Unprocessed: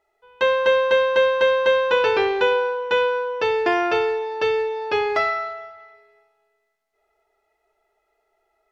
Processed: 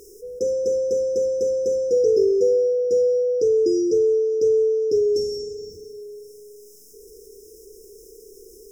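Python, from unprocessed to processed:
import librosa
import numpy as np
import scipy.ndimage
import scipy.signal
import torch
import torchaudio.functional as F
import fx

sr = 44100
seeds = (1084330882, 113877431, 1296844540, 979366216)

y = fx.brickwall_bandstop(x, sr, low_hz=510.0, high_hz=5000.0)
y = fx.low_shelf(y, sr, hz=410.0, db=-9.0)
y = fx.env_flatten(y, sr, amount_pct=50)
y = F.gain(torch.from_numpy(y), 7.0).numpy()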